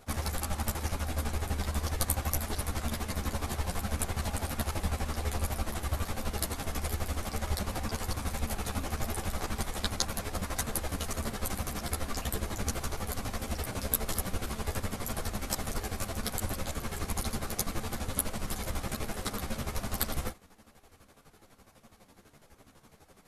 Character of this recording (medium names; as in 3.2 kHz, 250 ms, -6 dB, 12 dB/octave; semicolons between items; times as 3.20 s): chopped level 12 Hz, depth 65%, duty 40%; a shimmering, thickened sound